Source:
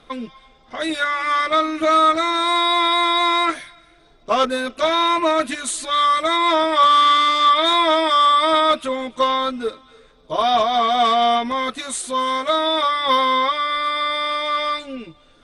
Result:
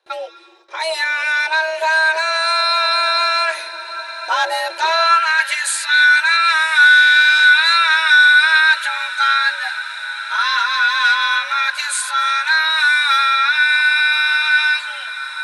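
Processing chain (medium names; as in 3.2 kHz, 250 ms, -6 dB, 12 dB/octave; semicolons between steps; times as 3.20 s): in parallel at +0.5 dB: peak limiter -15.5 dBFS, peak gain reduction 10 dB; on the sum: frequency shift +320 Hz; treble shelf 2.3 kHz +3.5 dB; gate with hold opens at -35 dBFS; on a send: echo that smears into a reverb 1019 ms, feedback 71%, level -14.5 dB; on the sum: high-pass sweep 62 Hz -> 1.7 kHz, 4.48–5.22 s; trim -4.5 dB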